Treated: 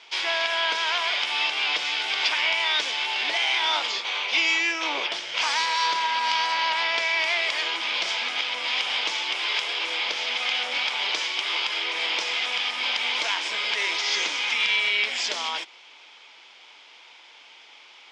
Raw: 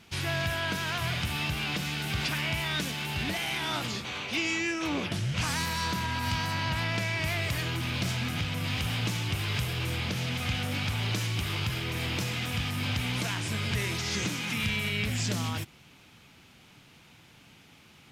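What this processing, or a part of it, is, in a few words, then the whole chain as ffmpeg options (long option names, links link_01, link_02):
phone speaker on a table: -af "highpass=frequency=440:width=0.5412,highpass=frequency=440:width=1.3066,equalizer=frequency=940:width_type=q:width=4:gain=7,equalizer=frequency=2200:width_type=q:width=4:gain=6,equalizer=frequency=3300:width_type=q:width=4:gain=8,equalizer=frequency=5000:width_type=q:width=4:gain=5,lowpass=frequency=6700:width=0.5412,lowpass=frequency=6700:width=1.3066,volume=3.5dB"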